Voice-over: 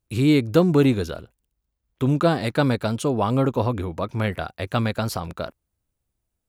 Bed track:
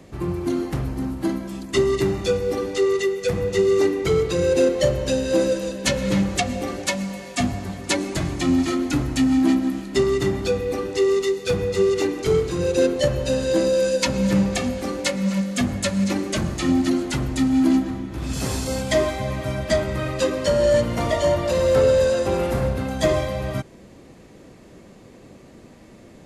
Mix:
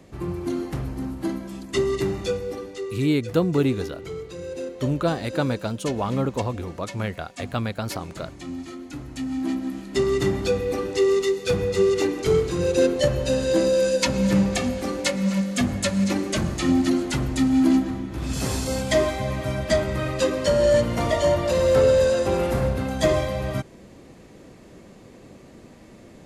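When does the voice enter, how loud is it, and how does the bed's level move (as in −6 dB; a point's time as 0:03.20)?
2.80 s, −4.0 dB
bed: 0:02.24 −3.5 dB
0:03.00 −14.5 dB
0:08.89 −14.5 dB
0:10.21 −0.5 dB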